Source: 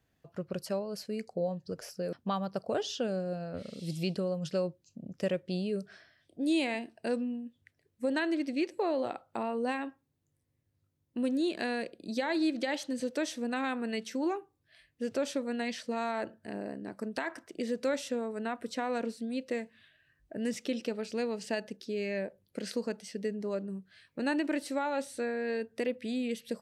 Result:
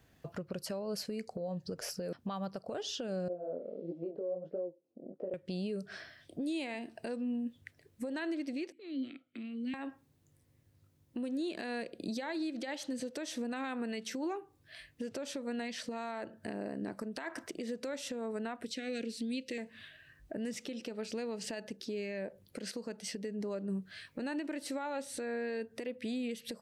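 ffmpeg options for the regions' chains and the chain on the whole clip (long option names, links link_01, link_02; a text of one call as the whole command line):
ffmpeg -i in.wav -filter_complex "[0:a]asettb=1/sr,asplit=3[link_01][link_02][link_03];[link_01]atrim=end=3.284[link_04];[link_02]atrim=start=3.28:end=5.34,asetpts=PTS-STARTPTS,afade=type=in:duration=0.004:curve=qsin,afade=type=out:start_time=2.056:duration=0.004:curve=qsin,flanger=delay=16.5:depth=7.4:speed=1.5,asuperpass=centerf=460:order=4:qfactor=1.3[link_05];[link_03]atrim=start=5.336[link_06];[link_04][link_05]acrossfade=duration=0.004:curve1=hsin:curve2=qsin[link_07];[link_07][link_06]acrossfade=duration=0.004:curve1=qsin:curve2=hsin,asettb=1/sr,asplit=3[link_08][link_09][link_10];[link_08]atrim=end=8.724[link_11];[link_09]atrim=start=8.72:end=9.74,asetpts=PTS-STARTPTS,afade=type=in:duration=0.004:curve=qsin,afade=type=out:start_time=1.016:duration=0.004:curve=qsin,acrossover=split=240|3000[link_12][link_13][link_14];[link_13]acompressor=threshold=-42dB:ratio=4:attack=3.2:release=140:knee=2.83:detection=peak[link_15];[link_12][link_15][link_14]amix=inputs=3:normalize=0,asplit=3[link_16][link_17][link_18];[link_16]bandpass=frequency=270:width_type=q:width=8,volume=0dB[link_19];[link_17]bandpass=frequency=2290:width_type=q:width=8,volume=-6dB[link_20];[link_18]bandpass=frequency=3010:width_type=q:width=8,volume=-9dB[link_21];[link_19][link_20][link_21]amix=inputs=3:normalize=0,equalizer=frequency=2600:width=0.78:gain=5.5[link_22];[link_10]atrim=start=9.736[link_23];[link_11][link_22]acrossfade=duration=0.004:curve1=hsin:curve2=qsin[link_24];[link_24][link_23]acrossfade=duration=0.004:curve1=qsin:curve2=hsin,asettb=1/sr,asplit=3[link_25][link_26][link_27];[link_25]atrim=end=18.644[link_28];[link_26]atrim=start=18.64:end=19.58,asetpts=PTS-STARTPTS,afade=type=in:duration=0.004:curve=qsin,afade=type=out:start_time=0.936:duration=0.004:curve=qsin,asuperstop=centerf=1000:order=4:qfactor=0.51,equalizer=frequency=2100:width=0.31:gain=8.5[link_29];[link_27]atrim=start=19.576[link_30];[link_28][link_29]acrossfade=duration=0.004:curve1=hsin:curve2=qsin[link_31];[link_31][link_30]acrossfade=duration=0.004:curve1=qsin:curve2=hsin,acompressor=threshold=-41dB:ratio=6,alimiter=level_in=15dB:limit=-24dB:level=0:latency=1:release=201,volume=-15dB,volume=9.5dB" out.wav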